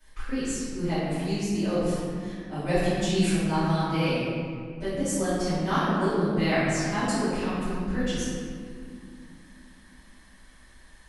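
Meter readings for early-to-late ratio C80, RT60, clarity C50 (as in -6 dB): -2.0 dB, 2.3 s, -4.0 dB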